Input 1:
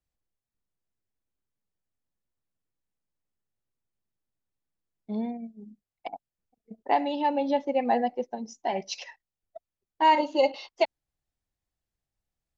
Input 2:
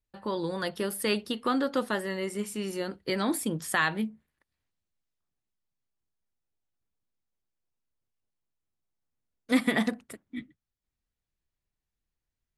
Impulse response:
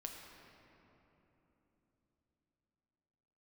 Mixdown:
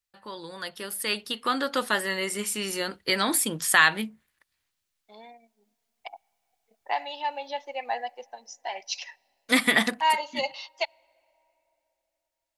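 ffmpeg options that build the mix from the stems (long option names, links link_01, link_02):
-filter_complex "[0:a]highpass=640,volume=-3.5dB,asplit=2[link_01][link_02];[link_02]volume=-23.5dB[link_03];[1:a]dynaudnorm=framelen=350:gausssize=9:maxgain=14dB,volume=-6.5dB[link_04];[2:a]atrim=start_sample=2205[link_05];[link_03][link_05]afir=irnorm=-1:irlink=0[link_06];[link_01][link_04][link_06]amix=inputs=3:normalize=0,tiltshelf=frequency=770:gain=-7"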